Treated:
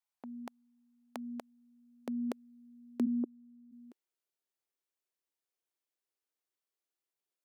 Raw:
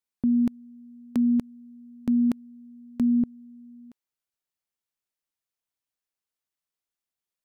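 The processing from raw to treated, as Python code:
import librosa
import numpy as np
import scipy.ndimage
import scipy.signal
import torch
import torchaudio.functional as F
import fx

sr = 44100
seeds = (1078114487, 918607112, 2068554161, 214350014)

y = fx.filter_sweep_highpass(x, sr, from_hz=780.0, to_hz=360.0, start_s=0.93, end_s=3.03, q=2.2)
y = fx.ellip_bandpass(y, sr, low_hz=260.0, high_hz=1300.0, order=3, stop_db=40, at=(3.05, 3.71), fade=0.02)
y = y * 10.0 ** (-4.0 / 20.0)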